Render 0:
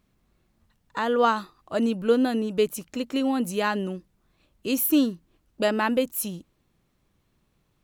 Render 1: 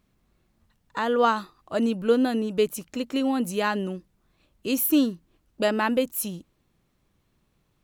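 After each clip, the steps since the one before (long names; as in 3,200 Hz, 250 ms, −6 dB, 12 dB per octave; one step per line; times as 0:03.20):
no processing that can be heard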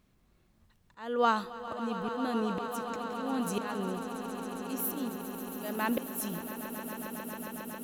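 volume swells 552 ms
echo that builds up and dies away 136 ms, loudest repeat 8, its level −13.5 dB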